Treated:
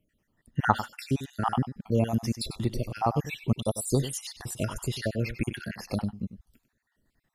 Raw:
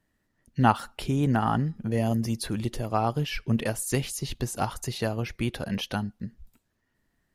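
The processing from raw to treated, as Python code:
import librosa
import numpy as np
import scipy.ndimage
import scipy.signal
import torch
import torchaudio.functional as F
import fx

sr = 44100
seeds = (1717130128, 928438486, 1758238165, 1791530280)

p1 = fx.spec_dropout(x, sr, seeds[0], share_pct=55)
p2 = p1 + fx.echo_single(p1, sr, ms=97, db=-12.5, dry=0)
y = F.gain(torch.from_numpy(p2), 2.0).numpy()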